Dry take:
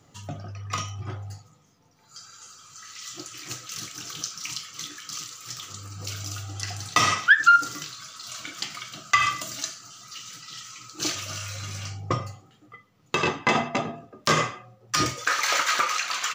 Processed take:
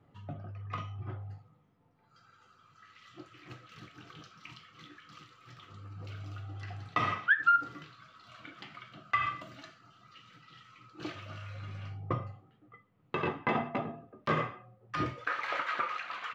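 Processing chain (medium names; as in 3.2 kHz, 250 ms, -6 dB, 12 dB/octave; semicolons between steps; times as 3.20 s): distance through air 500 m; trim -5.5 dB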